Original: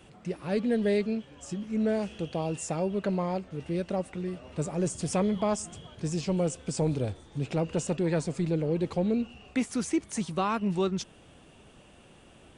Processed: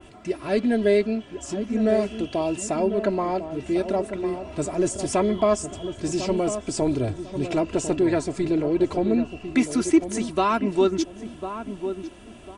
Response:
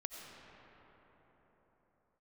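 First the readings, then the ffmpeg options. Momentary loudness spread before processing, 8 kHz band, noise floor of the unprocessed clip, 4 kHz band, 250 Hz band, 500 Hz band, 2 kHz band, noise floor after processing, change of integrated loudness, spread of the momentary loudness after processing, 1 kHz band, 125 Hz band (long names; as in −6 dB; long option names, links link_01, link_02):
8 LU, +5.0 dB, −55 dBFS, +5.5 dB, +6.0 dB, +7.5 dB, +6.5 dB, −45 dBFS, +6.0 dB, 10 LU, +7.5 dB, −1.0 dB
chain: -filter_complex "[0:a]aecho=1:1:3:0.71,asplit=2[link_01][link_02];[link_02]adelay=1050,lowpass=frequency=980:poles=1,volume=-8.5dB,asplit=2[link_03][link_04];[link_04]adelay=1050,lowpass=frequency=980:poles=1,volume=0.32,asplit=2[link_05][link_06];[link_06]adelay=1050,lowpass=frequency=980:poles=1,volume=0.32,asplit=2[link_07][link_08];[link_08]adelay=1050,lowpass=frequency=980:poles=1,volume=0.32[link_09];[link_03][link_05][link_07][link_09]amix=inputs=4:normalize=0[link_10];[link_01][link_10]amix=inputs=2:normalize=0,adynamicequalizer=threshold=0.00631:dfrequency=2300:dqfactor=0.7:tfrequency=2300:tqfactor=0.7:attack=5:release=100:ratio=0.375:range=2:mode=cutabove:tftype=highshelf,volume=5.5dB"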